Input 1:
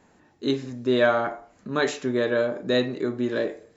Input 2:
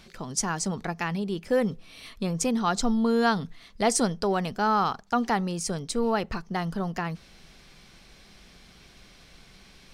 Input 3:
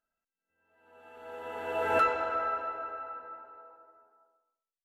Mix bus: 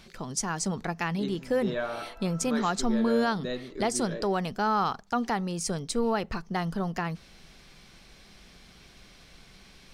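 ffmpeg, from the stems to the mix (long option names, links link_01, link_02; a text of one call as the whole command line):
ffmpeg -i stem1.wav -i stem2.wav -i stem3.wav -filter_complex "[0:a]adelay=750,volume=-12dB[link_01];[1:a]alimiter=limit=-16dB:level=0:latency=1:release=296,volume=-0.5dB[link_02];[2:a]volume=-19dB[link_03];[link_01][link_02][link_03]amix=inputs=3:normalize=0" out.wav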